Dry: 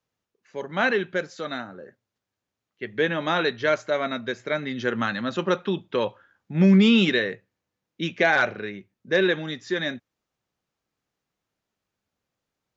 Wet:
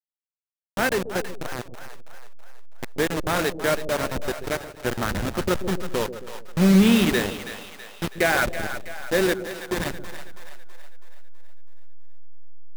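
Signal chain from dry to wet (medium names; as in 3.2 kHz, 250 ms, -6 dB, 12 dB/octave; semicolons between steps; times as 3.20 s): send-on-delta sampling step -20 dBFS; on a send: two-band feedback delay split 560 Hz, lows 134 ms, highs 326 ms, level -10.5 dB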